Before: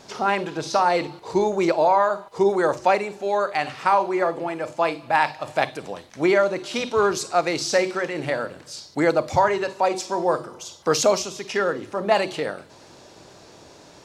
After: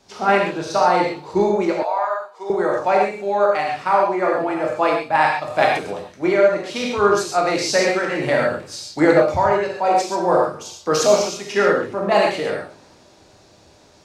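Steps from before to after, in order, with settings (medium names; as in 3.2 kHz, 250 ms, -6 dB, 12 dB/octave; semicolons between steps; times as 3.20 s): treble shelf 3 kHz -3.5 dB; gated-style reverb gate 160 ms flat, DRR -1.5 dB; gain riding within 5 dB 0.5 s; 1.82–2.50 s: high-pass 750 Hz 12 dB/octave; three bands expanded up and down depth 40%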